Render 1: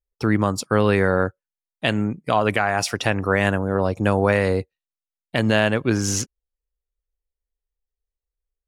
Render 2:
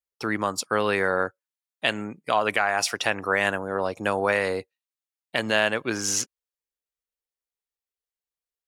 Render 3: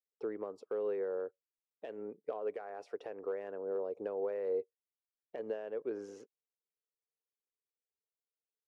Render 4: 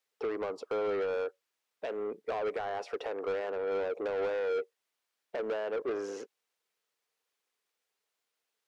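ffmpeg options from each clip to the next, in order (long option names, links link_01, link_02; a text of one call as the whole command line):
ffmpeg -i in.wav -af "highpass=frequency=720:poles=1" out.wav
ffmpeg -i in.wav -af "acompressor=threshold=-26dB:ratio=4,asoftclip=type=hard:threshold=-19dB,bandpass=frequency=440:width_type=q:width=5.2:csg=0,volume=1.5dB" out.wav
ffmpeg -i in.wav -filter_complex "[0:a]asplit=2[link_01][link_02];[link_02]highpass=frequency=720:poles=1,volume=23dB,asoftclip=type=tanh:threshold=-25.5dB[link_03];[link_01][link_03]amix=inputs=2:normalize=0,lowpass=frequency=3600:poles=1,volume=-6dB" out.wav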